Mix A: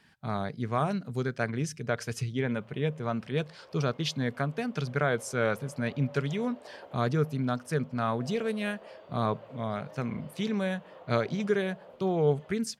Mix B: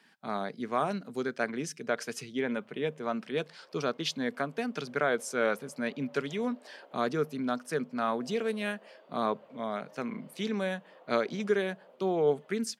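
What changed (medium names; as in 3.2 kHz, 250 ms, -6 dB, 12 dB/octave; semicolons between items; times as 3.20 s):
background -6.5 dB; master: add high-pass 210 Hz 24 dB/octave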